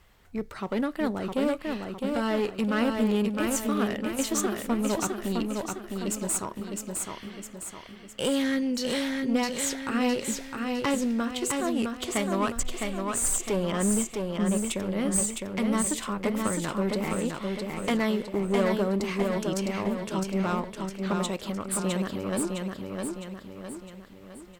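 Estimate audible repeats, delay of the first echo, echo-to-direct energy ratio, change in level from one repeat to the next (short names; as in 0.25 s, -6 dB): 5, 0.659 s, -3.0 dB, -6.5 dB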